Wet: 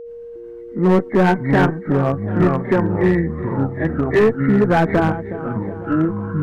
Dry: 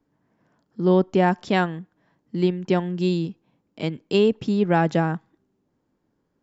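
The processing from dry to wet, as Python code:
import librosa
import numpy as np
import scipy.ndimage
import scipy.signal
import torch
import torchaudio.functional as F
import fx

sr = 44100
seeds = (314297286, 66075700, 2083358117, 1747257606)

p1 = fx.freq_compress(x, sr, knee_hz=1500.0, ratio=4.0)
p2 = fx.highpass(p1, sr, hz=110.0, slope=6)
p3 = fx.dmg_noise_colour(p2, sr, seeds[0], colour='brown', level_db=-61.0)
p4 = 10.0 ** (-17.0 / 20.0) * np.tanh(p3 / 10.0 ** (-17.0 / 20.0))
p5 = p3 + (p4 * librosa.db_to_amplitude(-10.0))
p6 = fx.cheby_harmonics(p5, sr, harmonics=(2,), levels_db=(-10,), full_scale_db=-6.0)
p7 = fx.granulator(p6, sr, seeds[1], grain_ms=248.0, per_s=8.5, spray_ms=32.0, spread_st=0)
p8 = p7 + 10.0 ** (-37.0 / 20.0) * np.sin(2.0 * np.pi * 470.0 * np.arange(len(p7)) / sr)
p9 = p8 + fx.echo_feedback(p8, sr, ms=367, feedback_pct=59, wet_db=-16, dry=0)
p10 = fx.echo_pitch(p9, sr, ms=357, semitones=-5, count=3, db_per_echo=-6.0)
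p11 = np.clip(10.0 ** (14.0 / 20.0) * p10, -1.0, 1.0) / 10.0 ** (14.0 / 20.0)
y = p11 * librosa.db_to_amplitude(5.5)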